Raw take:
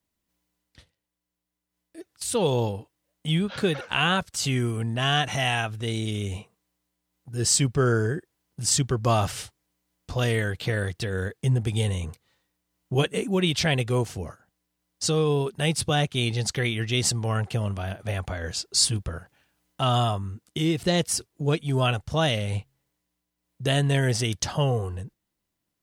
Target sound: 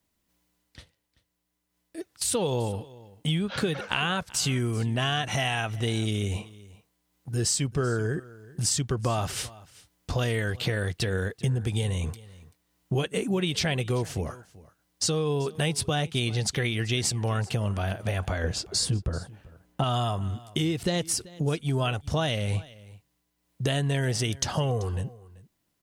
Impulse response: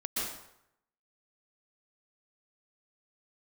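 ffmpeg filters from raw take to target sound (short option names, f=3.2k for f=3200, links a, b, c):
-filter_complex "[0:a]asettb=1/sr,asplit=3[a][b][c];[a]atrim=end=18.444[d];[b]atrim=start=18.44:end=19.84,asetpts=PTS-STARTPTS,afade=t=in:d=0.004:c=qsin,afade=t=out:st=1.396:d=0.004:c=qsin,tiltshelf=f=1.3k:g=6[e];[c]atrim=start=19.836[f];[d][e]acrossfade=d=0.004:c1=hsin:c2=qsin[g];[g][f]acrossfade=d=0.004:c1=qsin:c2=hsin,acompressor=threshold=-29dB:ratio=6,aecho=1:1:386:0.0944,volume=5dB"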